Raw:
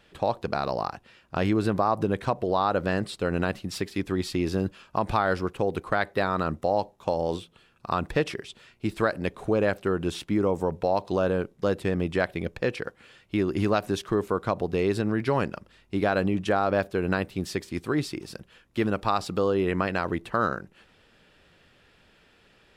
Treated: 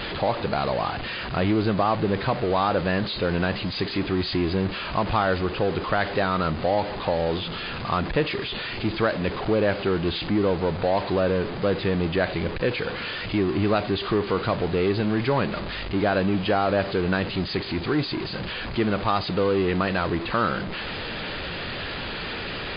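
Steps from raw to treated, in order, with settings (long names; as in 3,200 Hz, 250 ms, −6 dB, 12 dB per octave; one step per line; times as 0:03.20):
converter with a step at zero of −25 dBFS
MP3 24 kbit/s 11,025 Hz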